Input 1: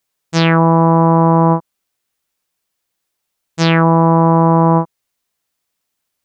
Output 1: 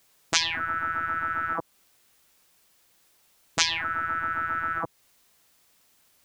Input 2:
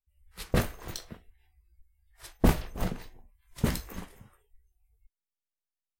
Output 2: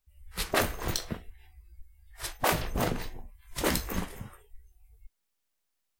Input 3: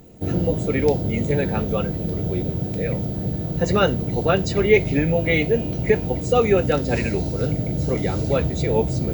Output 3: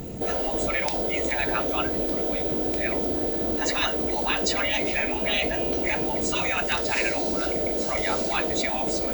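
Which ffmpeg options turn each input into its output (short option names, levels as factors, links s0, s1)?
-filter_complex "[0:a]afftfilt=real='re*lt(hypot(re,im),0.2)':imag='im*lt(hypot(re,im),0.2)':win_size=1024:overlap=0.75,asplit=2[s0][s1];[s1]acompressor=threshold=0.00891:ratio=6,volume=1.41[s2];[s0][s2]amix=inputs=2:normalize=0,volume=1.5"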